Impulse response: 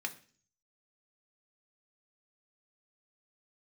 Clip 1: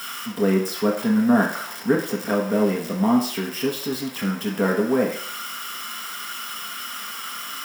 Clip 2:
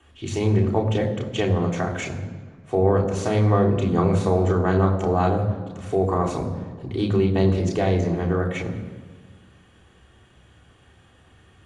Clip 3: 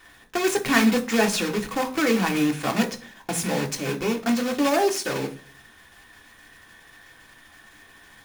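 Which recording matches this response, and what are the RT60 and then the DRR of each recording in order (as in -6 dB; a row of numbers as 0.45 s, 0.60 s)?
3; 0.60 s, 1.5 s, 0.45 s; -2.0 dB, -1.5 dB, 3.5 dB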